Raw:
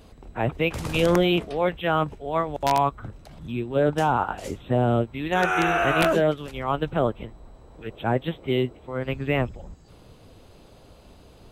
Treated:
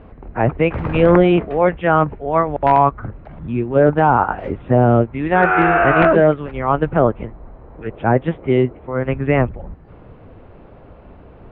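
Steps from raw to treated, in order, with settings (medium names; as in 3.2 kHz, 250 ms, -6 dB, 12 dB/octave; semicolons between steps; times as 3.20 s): low-pass 2.1 kHz 24 dB/octave; trim +8.5 dB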